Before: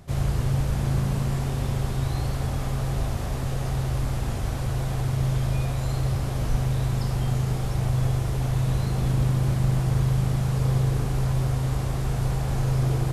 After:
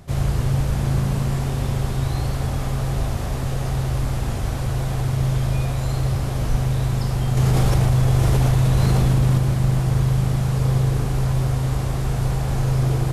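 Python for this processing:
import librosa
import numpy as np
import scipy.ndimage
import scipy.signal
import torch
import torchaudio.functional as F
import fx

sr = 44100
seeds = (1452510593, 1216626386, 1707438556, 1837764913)

y = fx.env_flatten(x, sr, amount_pct=100, at=(7.37, 9.38))
y = F.gain(torch.from_numpy(y), 3.5).numpy()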